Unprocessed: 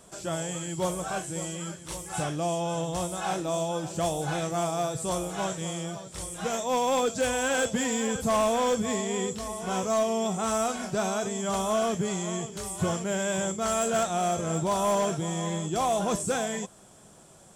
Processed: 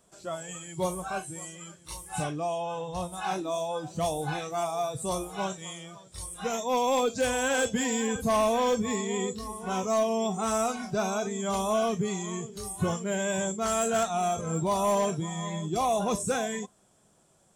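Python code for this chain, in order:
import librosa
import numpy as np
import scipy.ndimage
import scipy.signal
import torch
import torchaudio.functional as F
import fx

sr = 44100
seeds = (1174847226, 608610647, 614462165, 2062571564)

y = fx.noise_reduce_blind(x, sr, reduce_db=11)
y = fx.high_shelf(y, sr, hz=fx.line((2.3, 11000.0), (3.12, 5800.0)), db=-11.0, at=(2.3, 3.12), fade=0.02)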